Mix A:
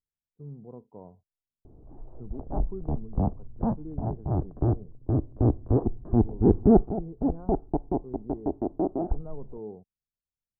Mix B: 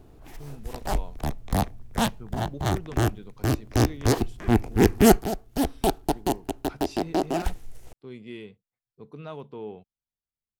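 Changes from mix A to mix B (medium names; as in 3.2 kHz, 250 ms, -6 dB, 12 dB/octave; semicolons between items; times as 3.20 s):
background: entry -1.65 s; master: remove Gaussian low-pass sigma 11 samples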